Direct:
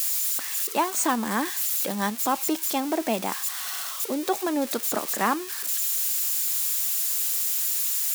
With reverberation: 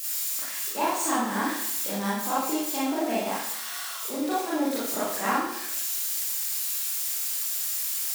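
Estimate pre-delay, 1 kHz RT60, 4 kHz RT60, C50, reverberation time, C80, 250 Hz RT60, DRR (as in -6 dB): 30 ms, 0.80 s, 0.70 s, -1.5 dB, 0.80 s, 3.5 dB, 0.80 s, -9.5 dB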